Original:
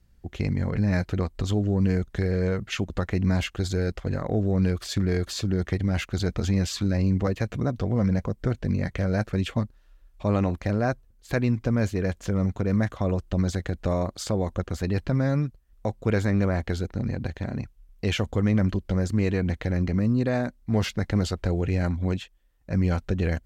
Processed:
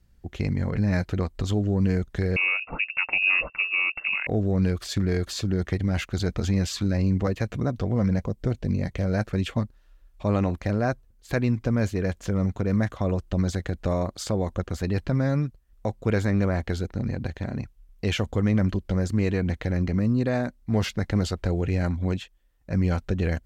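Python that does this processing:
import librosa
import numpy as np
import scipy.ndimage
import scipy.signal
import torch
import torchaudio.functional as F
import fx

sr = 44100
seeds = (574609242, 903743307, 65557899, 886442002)

y = fx.freq_invert(x, sr, carrier_hz=2700, at=(2.36, 4.27))
y = fx.peak_eq(y, sr, hz=1500.0, db=-6.5, octaves=0.92, at=(8.21, 9.07))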